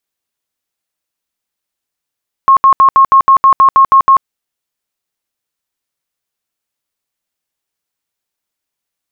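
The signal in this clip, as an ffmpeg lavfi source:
-f lavfi -i "aevalsrc='0.75*sin(2*PI*1080*mod(t,0.16))*lt(mod(t,0.16),95/1080)':d=1.76:s=44100"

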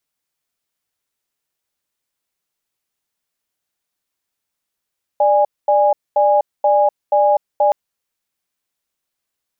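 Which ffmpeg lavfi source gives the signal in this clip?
-f lavfi -i "aevalsrc='0.224*(sin(2*PI*592*t)+sin(2*PI*824*t))*clip(min(mod(t,0.48),0.25-mod(t,0.48))/0.005,0,1)':d=2.52:s=44100"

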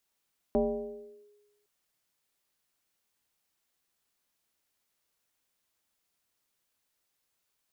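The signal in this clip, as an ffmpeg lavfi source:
-f lavfi -i "aevalsrc='0.0891*pow(10,-3*t/1.2)*sin(2*PI*414*t+1.4*clip(1-t/0.75,0,1)*sin(2*PI*0.45*414*t))':d=1.11:s=44100"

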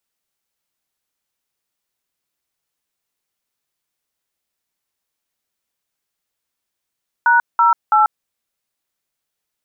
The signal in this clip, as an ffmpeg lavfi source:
-f lavfi -i "aevalsrc='0.251*clip(min(mod(t,0.33),0.14-mod(t,0.33))/0.002,0,1)*(eq(floor(t/0.33),0)*(sin(2*PI*941*mod(t,0.33))+sin(2*PI*1477*mod(t,0.33)))+eq(floor(t/0.33),1)*(sin(2*PI*941*mod(t,0.33))+sin(2*PI*1336*mod(t,0.33)))+eq(floor(t/0.33),2)*(sin(2*PI*852*mod(t,0.33))+sin(2*PI*1336*mod(t,0.33))))':d=0.99:s=44100"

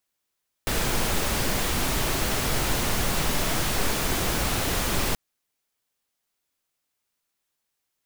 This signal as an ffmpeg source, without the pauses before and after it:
-f lavfi -i "anoisesrc=c=pink:a=0.305:d=4.48:r=44100:seed=1"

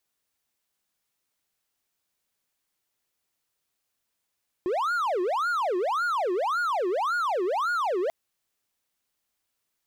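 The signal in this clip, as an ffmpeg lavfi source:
-f lavfi -i "aevalsrc='0.0841*(1-4*abs(mod((896*t-544/(2*PI*1.8)*sin(2*PI*1.8*t))+0.25,1)-0.5))':d=3.44:s=44100"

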